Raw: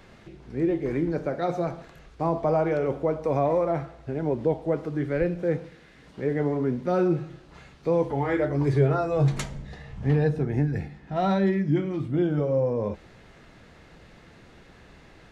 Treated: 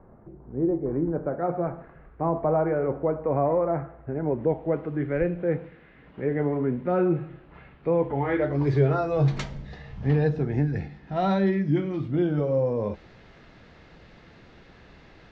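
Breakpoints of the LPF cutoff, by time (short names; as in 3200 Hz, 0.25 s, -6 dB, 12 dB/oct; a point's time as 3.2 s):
LPF 24 dB/oct
0.86 s 1100 Hz
1.65 s 1800 Hz
4.13 s 1800 Hz
4.7 s 2700 Hz
8.11 s 2700 Hz
8.74 s 5600 Hz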